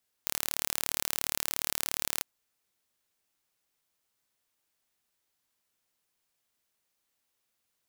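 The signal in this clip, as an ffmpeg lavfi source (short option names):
-f lavfi -i "aevalsrc='0.708*eq(mod(n,1189),0)':d=1.95:s=44100"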